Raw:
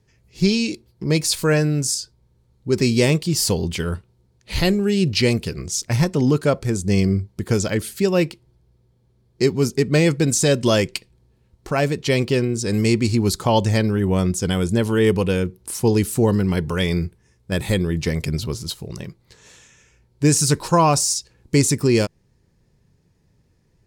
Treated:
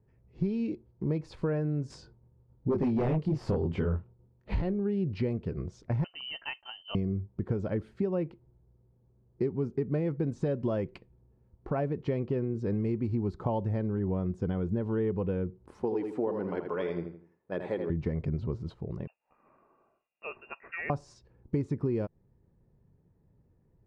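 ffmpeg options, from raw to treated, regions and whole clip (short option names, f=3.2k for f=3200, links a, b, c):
-filter_complex "[0:a]asettb=1/sr,asplit=3[a][b][c];[a]atrim=end=1.904[d];[b]atrim=start=1.9:end=4.62,asetpts=PTS-STARTPTS,afade=t=in:d=0.004:c=qsin,afade=t=out:st=2.716:d=0.004:c=qsin,agate=range=-33dB:threshold=-54dB:ratio=3:release=100:detection=peak,flanger=delay=19.5:depth=6.7:speed=1.1,aeval=exprs='0.398*sin(PI/2*2.51*val(0)/0.398)':c=same[e];[c]atrim=start=4.616[f];[d][e]acrossfade=d=0.004:c1=hsin:c2=qsin[g];[g][f]acrossfade=d=0.004:c1=qsin:c2=hsin,asettb=1/sr,asplit=3[h][i][j];[h]atrim=end=6.044[k];[i]atrim=start=6.04:end=6.95,asetpts=PTS-STARTPTS,afade=t=in:d=0.004:c=qsin,afade=t=out:st=0.906:d=0.004:c=qsin,highpass=110,lowpass=f=2.7k:t=q:w=0.5098,lowpass=f=2.7k:t=q:w=0.6013,lowpass=f=2.7k:t=q:w=0.9,lowpass=f=2.7k:t=q:w=2.563,afreqshift=-3200,agate=range=-33dB:threshold=-33dB:ratio=3:release=100:detection=peak[l];[j]atrim=start=6.946[m];[k][l]acrossfade=d=0.004:c1=hsin:c2=qsin[n];[n][m]acrossfade=d=0.004:c1=qsin:c2=hsin,asettb=1/sr,asplit=3[o][p][q];[o]atrim=end=15.834[r];[p]atrim=start=15.83:end=17.9,asetpts=PTS-STARTPTS,afade=t=in:d=0.004:c=qsin,afade=t=out:st=2.066:d=0.004:c=qsin,highpass=390,aphaser=in_gain=1:out_gain=1:delay=4.9:decay=0.29:speed=1.7:type=triangular,asplit=2[s][t];[t]adelay=81,lowpass=f=4.5k:p=1,volume=-7dB,asplit=2[u][v];[v]adelay=81,lowpass=f=4.5k:p=1,volume=0.35,asplit=2[w][x];[x]adelay=81,lowpass=f=4.5k:p=1,volume=0.35,asplit=2[y][z];[z]adelay=81,lowpass=f=4.5k:p=1,volume=0.35[aa];[s][u][w][y][aa]amix=inputs=5:normalize=0,atrim=end_sample=91287[ab];[q]atrim=start=17.896[ac];[r][ab]acrossfade=d=0.004:c1=hsin:c2=qsin[ad];[ad][ac]acrossfade=d=0.004:c1=qsin:c2=hsin,asettb=1/sr,asplit=3[ae][af][ag];[ae]atrim=end=19.074[ah];[af]atrim=start=19.07:end=20.9,asetpts=PTS-STARTPTS,afade=t=in:d=0.004:c=qsin,afade=t=out:st=1.826:d=0.004:c=qsin,highpass=f=520:p=1,equalizer=f=900:t=o:w=1.5:g=-4.5,lowpass=f=2.5k:t=q:w=0.5098,lowpass=f=2.5k:t=q:w=0.6013,lowpass=f=2.5k:t=q:w=0.9,lowpass=f=2.5k:t=q:w=2.563,afreqshift=-2900[ai];[ag]atrim=start=20.896[aj];[ah][ai]acrossfade=d=0.004:c1=hsin:c2=qsin[ak];[ak][aj]acrossfade=d=0.004:c1=qsin:c2=hsin,lowpass=1k,acompressor=threshold=-22dB:ratio=6,volume=-4.5dB"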